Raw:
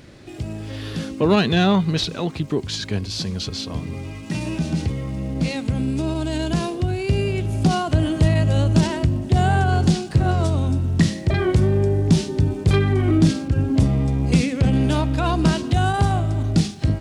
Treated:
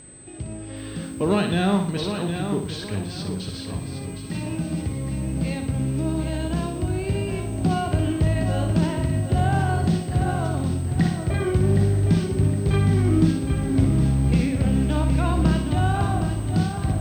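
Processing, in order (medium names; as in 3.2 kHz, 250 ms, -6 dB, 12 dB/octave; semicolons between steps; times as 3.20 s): flutter echo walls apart 10.2 m, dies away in 0.51 s; companded quantiser 6-bit; whistle 8.2 kHz -22 dBFS; distance through air 160 m; bit-crushed delay 764 ms, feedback 35%, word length 7-bit, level -7.5 dB; trim -4.5 dB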